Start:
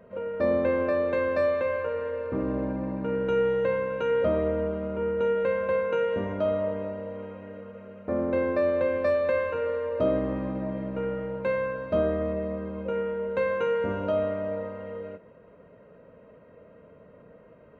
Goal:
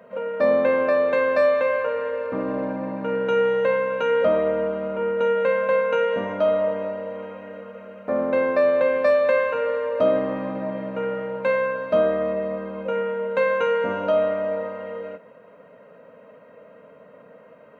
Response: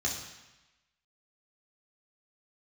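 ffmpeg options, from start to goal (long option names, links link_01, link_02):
-af "highpass=260,equalizer=frequency=360:width=3.7:gain=-13,volume=7.5dB"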